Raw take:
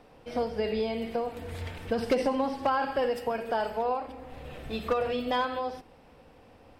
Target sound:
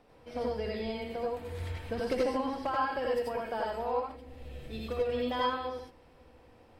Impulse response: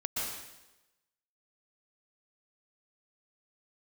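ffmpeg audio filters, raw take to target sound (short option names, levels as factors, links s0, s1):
-filter_complex "[0:a]asettb=1/sr,asplit=3[s0][s1][s2];[s0]atrim=end=4.064[s3];[s1]atrim=start=4.06:end=5.09,asetpts=PTS-STARTPTS,afade=t=in:d=0.004:c=qsin,afade=t=out:st=1.026:d=0.004:c=qsin,equalizer=f=1100:t=o:w=1.5:g=-9[s4];[s2]atrim=start=5.086[s5];[s3][s4]acrossfade=d=0.004:c1=hsin:c2=qsin[s6];[s6][s5]acrossfade=d=0.004:c1=qsin:c2=hsin[s7];[1:a]atrim=start_sample=2205,afade=t=out:st=0.2:d=0.01,atrim=end_sample=9261,asetrate=66150,aresample=44100[s8];[s7][s8]afir=irnorm=-1:irlink=0,volume=0.794"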